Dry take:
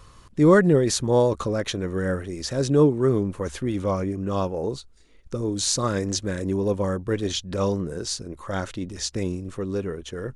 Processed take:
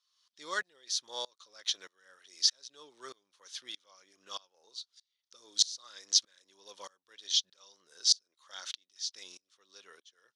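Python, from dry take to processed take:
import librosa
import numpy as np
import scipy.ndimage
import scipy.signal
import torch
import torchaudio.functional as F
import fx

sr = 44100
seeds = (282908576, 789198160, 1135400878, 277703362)

y = scipy.signal.sosfilt(scipy.signal.butter(2, 1400.0, 'highpass', fs=sr, output='sos'), x)
y = fx.band_shelf(y, sr, hz=4400.0, db=14.0, octaves=1.2)
y = fx.tremolo_decay(y, sr, direction='swelling', hz=1.6, depth_db=28)
y = y * librosa.db_to_amplitude(-5.0)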